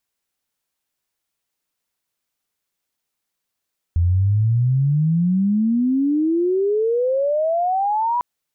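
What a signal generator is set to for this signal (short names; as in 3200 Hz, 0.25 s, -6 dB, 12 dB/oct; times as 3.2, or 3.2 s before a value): chirp logarithmic 83 Hz -> 990 Hz -13.5 dBFS -> -17 dBFS 4.25 s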